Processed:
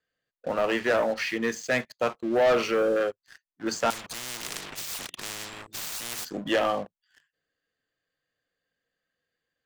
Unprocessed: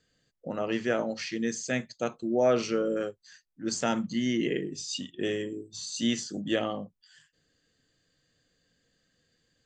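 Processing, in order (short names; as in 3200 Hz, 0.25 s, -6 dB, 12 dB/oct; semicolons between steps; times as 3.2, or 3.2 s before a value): three-band isolator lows -13 dB, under 470 Hz, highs -14 dB, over 2900 Hz; sample leveller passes 3; 3.9–6.25 spectral compressor 10:1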